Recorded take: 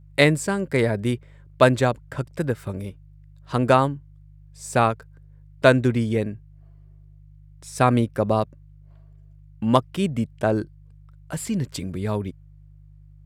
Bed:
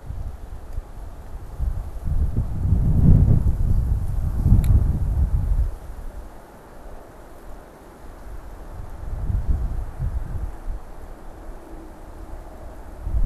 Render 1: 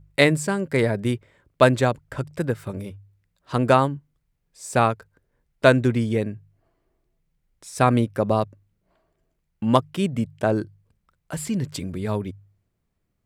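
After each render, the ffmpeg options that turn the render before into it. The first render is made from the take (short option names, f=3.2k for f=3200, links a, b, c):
-af "bandreject=f=50:t=h:w=4,bandreject=f=100:t=h:w=4,bandreject=f=150:t=h:w=4"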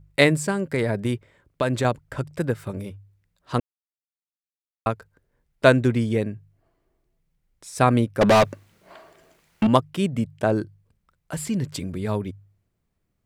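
-filter_complex "[0:a]asettb=1/sr,asplit=3[a][b][c];[a]atrim=end=0.504[d];[b]atrim=start=0.5:end=1.85,asetpts=PTS-STARTPTS,afade=t=in:d=0.004:c=qsin,afade=t=out:st=1.346:d=0.004:c=qsin,acompressor=threshold=-18dB:ratio=6:attack=3.2:release=140:knee=1:detection=peak[e];[c]atrim=start=1.846[f];[d][e]acrossfade=d=0.004:c1=hsin:c2=qsin[g];[g][f]acrossfade=d=0.004:c1=qsin:c2=hsin,asettb=1/sr,asplit=3[h][i][j];[h]atrim=end=8.214[k];[i]atrim=start=8.21:end=9.67,asetpts=PTS-STARTPTS,afade=t=in:d=0.004:c=qsin,afade=t=out:st=1.456:d=0.004:c=qsin,asplit=2[l][m];[m]highpass=f=720:p=1,volume=30dB,asoftclip=type=tanh:threshold=-8.5dB[n];[l][n]amix=inputs=2:normalize=0,lowpass=f=7.6k:p=1,volume=-6dB[o];[j]atrim=start=9.666[p];[k][o]acrossfade=d=0.004:c1=hsin:c2=qsin[q];[q][p]acrossfade=d=0.004:c1=qsin:c2=hsin,asplit=3[r][s][t];[r]atrim=end=3.6,asetpts=PTS-STARTPTS,afade=t=out:st=3.596:d=0.004:c=hsin[u];[s]atrim=start=3.6:end=4.86,asetpts=PTS-STARTPTS,volume=0[v];[t]atrim=start=4.86,asetpts=PTS-STARTPTS,afade=t=in:d=0.004:c=hsin[w];[u][v][w]concat=n=3:v=0:a=1"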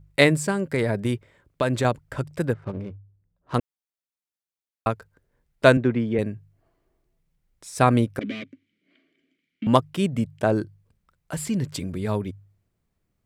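-filter_complex "[0:a]asettb=1/sr,asplit=3[a][b][c];[a]atrim=end=2.534[d];[b]atrim=start=2.53:end=3.55,asetpts=PTS-STARTPTS,afade=t=in:d=0.004:c=qsin,afade=t=out:st=1.016:d=0.004:c=qsin,adynamicsmooth=sensitivity=6.5:basefreq=750[e];[c]atrim=start=3.546[f];[d][e]acrossfade=d=0.004:c1=hsin:c2=qsin[g];[g][f]acrossfade=d=0.004:c1=qsin:c2=hsin,asettb=1/sr,asplit=3[h][i][j];[h]atrim=end=5.774[k];[i]atrim=start=5.77:end=6.19,asetpts=PTS-STARTPTS,afade=t=in:d=0.004:c=qsin,afade=t=out:st=0.416:d=0.004:c=qsin,highpass=140,lowpass=2.4k[l];[j]atrim=start=6.186[m];[k][l]acrossfade=d=0.004:c1=hsin:c2=qsin[n];[n][m]acrossfade=d=0.004:c1=qsin:c2=hsin,asettb=1/sr,asplit=3[o][p][q];[o]atrim=end=8.194[r];[p]atrim=start=8.19:end=9.67,asetpts=PTS-STARTPTS,afade=t=in:d=0.004:c=qsin,afade=t=out:st=1.476:d=0.004:c=qsin,asplit=3[s][t][u];[s]bandpass=f=270:t=q:w=8,volume=0dB[v];[t]bandpass=f=2.29k:t=q:w=8,volume=-6dB[w];[u]bandpass=f=3.01k:t=q:w=8,volume=-9dB[x];[v][w][x]amix=inputs=3:normalize=0[y];[q]atrim=start=9.666[z];[r][y]acrossfade=d=0.004:c1=hsin:c2=qsin[aa];[aa][z]acrossfade=d=0.004:c1=qsin:c2=hsin"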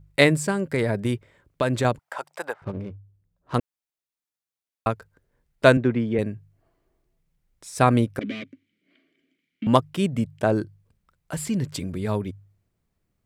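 -filter_complex "[0:a]asettb=1/sr,asplit=3[a][b][c];[a]atrim=end=1.994[d];[b]atrim=start=1.99:end=2.62,asetpts=PTS-STARTPTS,afade=t=in:d=0.004:c=qsin,afade=t=out:st=0.626:d=0.004:c=qsin,highpass=f=810:t=q:w=2.9[e];[c]atrim=start=2.616[f];[d][e]acrossfade=d=0.004:c1=hsin:c2=qsin[g];[g][f]acrossfade=d=0.004:c1=qsin:c2=hsin"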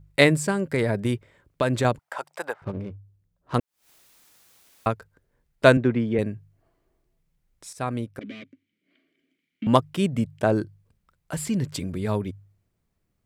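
-filter_complex "[0:a]asplit=3[a][b][c];[a]afade=t=out:st=3.59:d=0.02[d];[b]acompressor=mode=upward:threshold=-30dB:ratio=2.5:attack=3.2:release=140:knee=2.83:detection=peak,afade=t=in:st=3.59:d=0.02,afade=t=out:st=4.9:d=0.02[e];[c]afade=t=in:st=4.9:d=0.02[f];[d][e][f]amix=inputs=3:normalize=0,asplit=2[g][h];[g]atrim=end=7.73,asetpts=PTS-STARTPTS,afade=t=out:st=7.726:d=0.004:c=hsin:silence=0.237137[i];[h]atrim=start=7.73,asetpts=PTS-STARTPTS,afade=t=in:d=2.15:silence=0.237137[j];[i][j]concat=n=2:v=0:a=1"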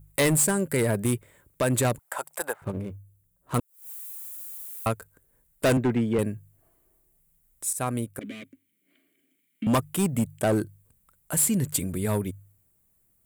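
-af "aexciter=amount=6.7:drive=6.6:freq=7.4k,volume=18dB,asoftclip=hard,volume=-18dB"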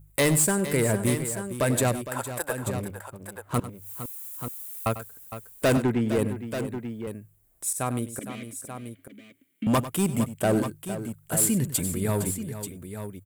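-af "aecho=1:1:97|460|885:0.2|0.251|0.316"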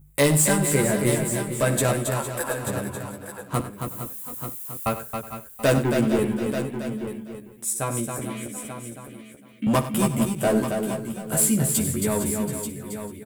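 -filter_complex "[0:a]asplit=2[a][b];[b]adelay=14,volume=-2.5dB[c];[a][c]amix=inputs=2:normalize=0,aecho=1:1:59|273|443|729:0.168|0.501|0.126|0.106"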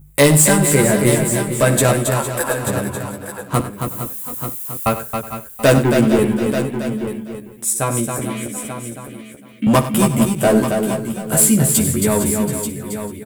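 -af "volume=7.5dB,alimiter=limit=-3dB:level=0:latency=1"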